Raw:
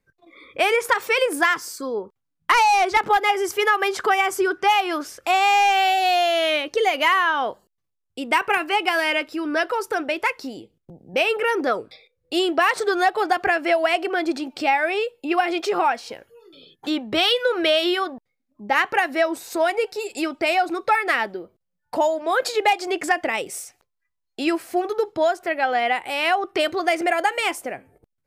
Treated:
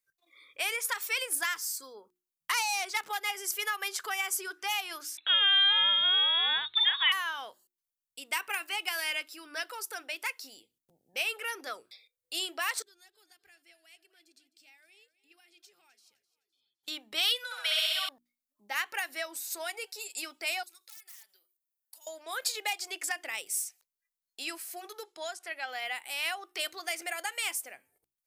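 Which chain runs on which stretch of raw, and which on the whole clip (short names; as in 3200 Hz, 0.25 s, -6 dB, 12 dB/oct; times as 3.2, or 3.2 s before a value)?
5.17–7.12 high shelf 2600 Hz +10 dB + inverted band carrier 4000 Hz
12.82–16.88 passive tone stack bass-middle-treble 10-0-1 + feedback echo 0.257 s, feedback 39%, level -16.5 dB
17.44–18.09 inverse Chebyshev high-pass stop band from 270 Hz, stop band 50 dB + flutter echo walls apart 11.2 m, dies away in 1.5 s
20.63–22.07 pre-emphasis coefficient 0.97 + wrapped overs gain 27 dB + compressor 8:1, threshold -45 dBFS
25.04–25.68 LPF 11000 Hz 24 dB/oct + bell 91 Hz -12.5 dB 1.5 oct
whole clip: pre-emphasis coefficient 0.97; notches 60/120/180/240/300/360 Hz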